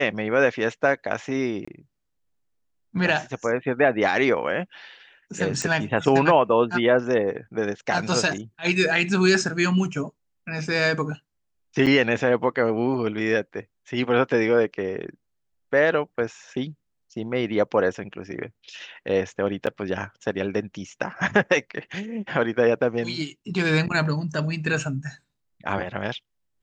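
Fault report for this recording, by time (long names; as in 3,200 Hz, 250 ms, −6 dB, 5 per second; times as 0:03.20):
0:01.65–0:01.68: drop-out 25 ms
0:05.62: click −13 dBFS
0:11.86–0:11.87: drop-out 7.3 ms
0:19.66–0:19.67: drop-out 8.8 ms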